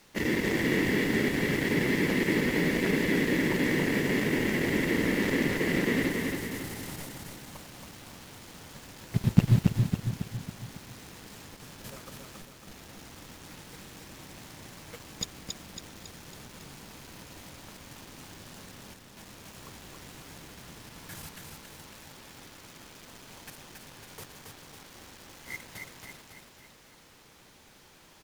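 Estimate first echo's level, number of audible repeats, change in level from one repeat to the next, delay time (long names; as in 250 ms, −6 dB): −4.0 dB, 5, −5.5 dB, 276 ms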